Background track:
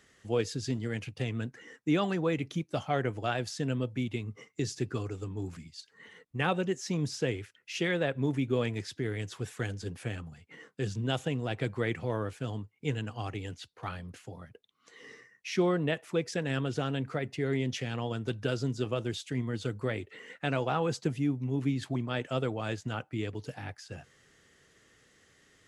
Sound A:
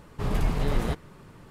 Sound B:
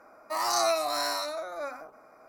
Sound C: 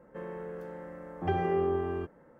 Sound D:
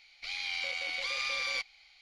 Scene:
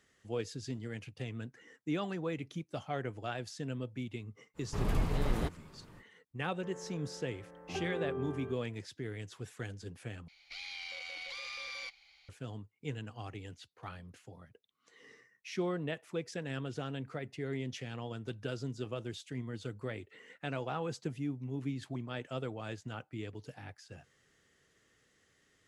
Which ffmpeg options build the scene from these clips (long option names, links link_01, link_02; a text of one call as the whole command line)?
ffmpeg -i bed.wav -i cue0.wav -i cue1.wav -i cue2.wav -i cue3.wav -filter_complex "[0:a]volume=-7.5dB[link_01];[3:a]asplit=2[link_02][link_03];[link_03]adelay=16,volume=-5.5dB[link_04];[link_02][link_04]amix=inputs=2:normalize=0[link_05];[4:a]acompressor=threshold=-39dB:ratio=3:attack=3.1:release=25:knee=1:detection=rms[link_06];[link_01]asplit=2[link_07][link_08];[link_07]atrim=end=10.284[link_09];[link_06]atrim=end=2.01,asetpts=PTS-STARTPTS,volume=-3.5dB[link_10];[link_08]atrim=start=12.286[link_11];[1:a]atrim=end=1.5,asetpts=PTS-STARTPTS,volume=-6dB,afade=type=in:duration=0.05,afade=type=out:start_time=1.45:duration=0.05,adelay=4540[link_12];[link_05]atrim=end=2.39,asetpts=PTS-STARTPTS,volume=-10dB,afade=type=in:duration=0.004:curve=hsin,afade=type=out:start_time=2.386:duration=0.004:curve=hsin,adelay=6470[link_13];[link_09][link_10]acrossfade=duration=0.004:curve1=hsin:curve2=hsin[link_14];[link_14][link_11]acrossfade=duration=0.004:curve1=hsin:curve2=hsin[link_15];[link_15][link_12][link_13]amix=inputs=3:normalize=0" out.wav